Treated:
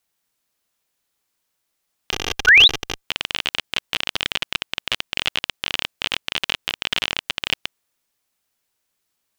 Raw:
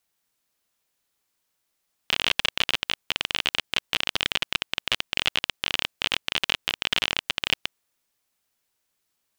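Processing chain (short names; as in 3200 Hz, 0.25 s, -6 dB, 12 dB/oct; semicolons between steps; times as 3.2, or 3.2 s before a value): 2.11–3.04 minimum comb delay 2.5 ms; 2.47–2.68 painted sound rise 1400–4100 Hz -11 dBFS; gain +1.5 dB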